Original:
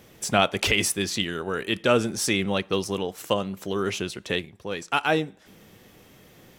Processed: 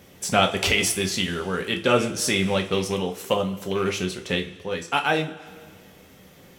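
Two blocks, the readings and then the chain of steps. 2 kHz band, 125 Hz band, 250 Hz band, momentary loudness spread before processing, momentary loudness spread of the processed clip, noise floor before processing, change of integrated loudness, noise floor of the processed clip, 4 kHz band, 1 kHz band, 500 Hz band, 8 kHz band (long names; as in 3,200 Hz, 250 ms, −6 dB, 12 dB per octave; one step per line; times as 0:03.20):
+1.5 dB, +3.0 dB, +1.5 dB, 8 LU, 8 LU, −54 dBFS, +1.5 dB, −50 dBFS, +2.0 dB, +2.0 dB, +1.5 dB, +2.0 dB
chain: loose part that buzzes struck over −27 dBFS, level −27 dBFS
coupled-rooms reverb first 0.28 s, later 2 s, from −19 dB, DRR 3 dB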